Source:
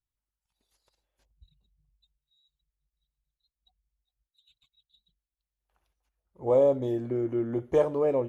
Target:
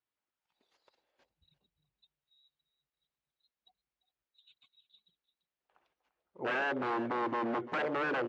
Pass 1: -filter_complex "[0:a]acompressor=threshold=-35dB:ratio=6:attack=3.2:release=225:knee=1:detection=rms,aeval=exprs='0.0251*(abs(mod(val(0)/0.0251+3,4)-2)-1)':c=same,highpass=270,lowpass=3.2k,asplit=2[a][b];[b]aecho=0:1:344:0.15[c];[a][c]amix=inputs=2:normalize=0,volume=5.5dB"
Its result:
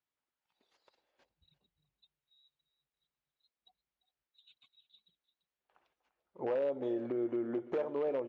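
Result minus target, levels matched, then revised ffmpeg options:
compressor: peak gain reduction +8.5 dB
-filter_complex "[0:a]acompressor=threshold=-25dB:ratio=6:attack=3.2:release=225:knee=1:detection=rms,aeval=exprs='0.0251*(abs(mod(val(0)/0.0251+3,4)-2)-1)':c=same,highpass=270,lowpass=3.2k,asplit=2[a][b];[b]aecho=0:1:344:0.15[c];[a][c]amix=inputs=2:normalize=0,volume=5.5dB"

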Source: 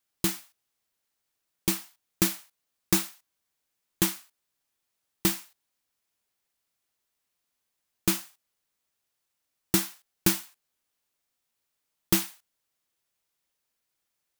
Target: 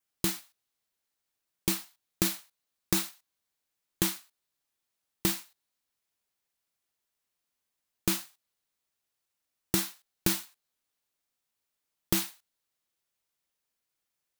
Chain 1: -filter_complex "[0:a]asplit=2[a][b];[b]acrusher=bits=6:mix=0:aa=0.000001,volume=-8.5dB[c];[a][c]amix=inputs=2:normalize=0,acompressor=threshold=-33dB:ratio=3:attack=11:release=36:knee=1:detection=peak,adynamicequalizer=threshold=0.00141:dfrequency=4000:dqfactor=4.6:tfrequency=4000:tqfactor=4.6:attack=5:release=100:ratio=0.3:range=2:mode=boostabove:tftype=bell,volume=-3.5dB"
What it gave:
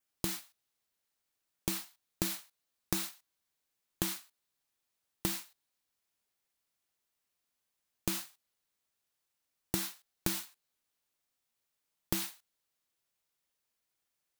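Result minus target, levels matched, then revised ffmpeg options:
compressor: peak gain reduction +7.5 dB
-filter_complex "[0:a]asplit=2[a][b];[b]acrusher=bits=6:mix=0:aa=0.000001,volume=-8.5dB[c];[a][c]amix=inputs=2:normalize=0,acompressor=threshold=-22dB:ratio=3:attack=11:release=36:knee=1:detection=peak,adynamicequalizer=threshold=0.00141:dfrequency=4000:dqfactor=4.6:tfrequency=4000:tqfactor=4.6:attack=5:release=100:ratio=0.3:range=2:mode=boostabove:tftype=bell,volume=-3.5dB"

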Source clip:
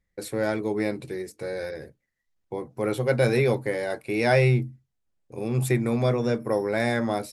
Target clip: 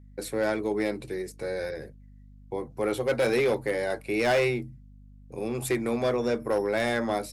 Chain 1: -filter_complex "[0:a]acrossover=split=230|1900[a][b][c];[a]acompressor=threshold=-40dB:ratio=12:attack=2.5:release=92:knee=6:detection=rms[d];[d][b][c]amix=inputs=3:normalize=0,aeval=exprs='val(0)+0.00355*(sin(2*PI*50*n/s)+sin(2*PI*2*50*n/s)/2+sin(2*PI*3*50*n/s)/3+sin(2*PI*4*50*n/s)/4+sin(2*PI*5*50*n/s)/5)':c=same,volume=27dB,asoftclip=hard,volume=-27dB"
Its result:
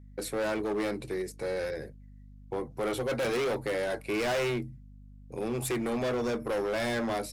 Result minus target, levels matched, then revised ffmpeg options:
overloaded stage: distortion +9 dB
-filter_complex "[0:a]acrossover=split=230|1900[a][b][c];[a]acompressor=threshold=-40dB:ratio=12:attack=2.5:release=92:knee=6:detection=rms[d];[d][b][c]amix=inputs=3:normalize=0,aeval=exprs='val(0)+0.00355*(sin(2*PI*50*n/s)+sin(2*PI*2*50*n/s)/2+sin(2*PI*3*50*n/s)/3+sin(2*PI*4*50*n/s)/4+sin(2*PI*5*50*n/s)/5)':c=same,volume=19dB,asoftclip=hard,volume=-19dB"

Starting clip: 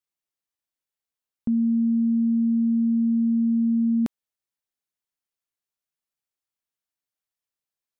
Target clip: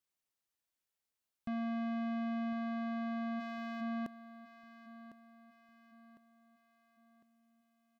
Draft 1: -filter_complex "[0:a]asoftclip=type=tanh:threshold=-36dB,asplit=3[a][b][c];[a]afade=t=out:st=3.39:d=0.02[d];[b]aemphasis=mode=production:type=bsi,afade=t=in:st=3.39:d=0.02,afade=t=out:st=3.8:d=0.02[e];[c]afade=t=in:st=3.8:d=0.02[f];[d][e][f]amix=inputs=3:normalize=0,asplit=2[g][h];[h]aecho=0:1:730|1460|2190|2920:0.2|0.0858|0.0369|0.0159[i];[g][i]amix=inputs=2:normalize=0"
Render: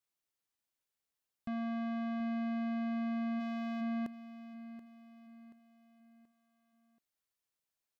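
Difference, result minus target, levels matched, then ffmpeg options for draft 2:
echo 0.324 s early
-filter_complex "[0:a]asoftclip=type=tanh:threshold=-36dB,asplit=3[a][b][c];[a]afade=t=out:st=3.39:d=0.02[d];[b]aemphasis=mode=production:type=bsi,afade=t=in:st=3.39:d=0.02,afade=t=out:st=3.8:d=0.02[e];[c]afade=t=in:st=3.8:d=0.02[f];[d][e][f]amix=inputs=3:normalize=0,asplit=2[g][h];[h]aecho=0:1:1054|2108|3162|4216:0.2|0.0858|0.0369|0.0159[i];[g][i]amix=inputs=2:normalize=0"

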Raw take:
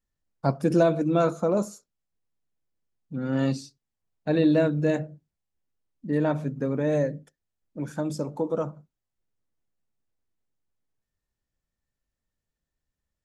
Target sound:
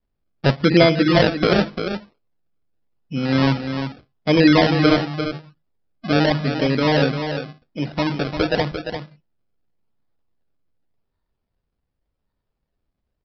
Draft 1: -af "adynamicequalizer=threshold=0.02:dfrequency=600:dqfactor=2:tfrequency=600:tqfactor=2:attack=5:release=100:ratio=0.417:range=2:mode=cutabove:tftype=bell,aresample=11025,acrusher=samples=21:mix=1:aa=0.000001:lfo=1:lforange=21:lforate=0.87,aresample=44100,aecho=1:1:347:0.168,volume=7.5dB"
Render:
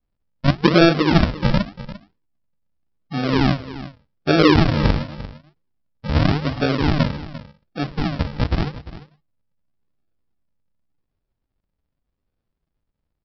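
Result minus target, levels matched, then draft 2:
decimation with a swept rate: distortion +13 dB; echo-to-direct -7.5 dB
-af "adynamicequalizer=threshold=0.02:dfrequency=600:dqfactor=2:tfrequency=600:tqfactor=2:attack=5:release=100:ratio=0.417:range=2:mode=cutabove:tftype=bell,aresample=11025,acrusher=samples=8:mix=1:aa=0.000001:lfo=1:lforange=8:lforate=0.87,aresample=44100,aecho=1:1:347:0.398,volume=7.5dB"

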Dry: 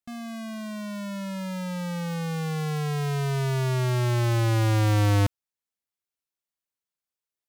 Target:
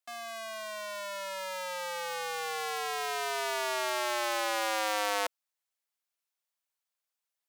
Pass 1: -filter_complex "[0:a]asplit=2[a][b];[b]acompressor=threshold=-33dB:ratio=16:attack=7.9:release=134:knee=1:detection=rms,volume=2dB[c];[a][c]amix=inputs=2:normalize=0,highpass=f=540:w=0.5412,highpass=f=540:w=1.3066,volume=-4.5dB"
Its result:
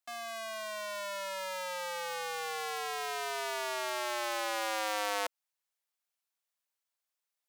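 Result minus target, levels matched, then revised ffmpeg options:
compressor: peak gain reduction +8.5 dB
-filter_complex "[0:a]asplit=2[a][b];[b]acompressor=threshold=-24dB:ratio=16:attack=7.9:release=134:knee=1:detection=rms,volume=2dB[c];[a][c]amix=inputs=2:normalize=0,highpass=f=540:w=0.5412,highpass=f=540:w=1.3066,volume=-4.5dB"

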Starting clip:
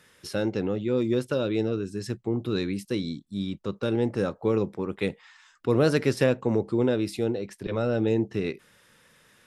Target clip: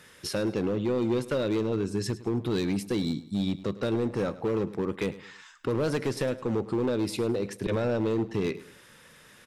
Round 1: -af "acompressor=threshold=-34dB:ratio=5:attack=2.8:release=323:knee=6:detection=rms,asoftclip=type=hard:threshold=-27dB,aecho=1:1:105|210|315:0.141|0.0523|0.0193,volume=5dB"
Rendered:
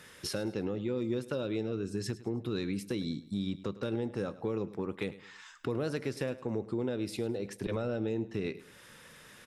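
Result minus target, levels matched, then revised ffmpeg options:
compressor: peak gain reduction +8 dB
-af "acompressor=threshold=-24dB:ratio=5:attack=2.8:release=323:knee=6:detection=rms,asoftclip=type=hard:threshold=-27dB,aecho=1:1:105|210|315:0.141|0.0523|0.0193,volume=5dB"

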